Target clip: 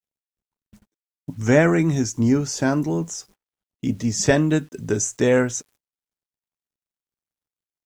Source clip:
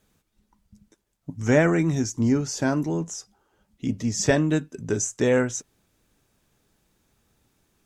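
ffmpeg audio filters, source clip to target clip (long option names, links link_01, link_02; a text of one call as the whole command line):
ffmpeg -i in.wav -af "acrusher=bits=9:mix=0:aa=0.000001,agate=range=-29dB:threshold=-52dB:ratio=16:detection=peak,volume=3dB" out.wav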